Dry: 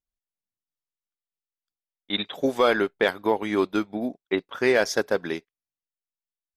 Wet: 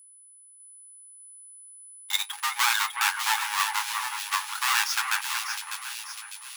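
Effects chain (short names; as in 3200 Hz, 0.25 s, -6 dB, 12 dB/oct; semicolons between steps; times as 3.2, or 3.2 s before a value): half-waves squared off; flange 0.31 Hz, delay 6.4 ms, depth 5.8 ms, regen +66%; whine 10000 Hz -50 dBFS; in parallel at -9 dB: bit-crush 6-bit; on the sum: brick-wall FIR high-pass 780 Hz; on a send: split-band echo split 2500 Hz, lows 0.369 s, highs 0.6 s, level -6 dB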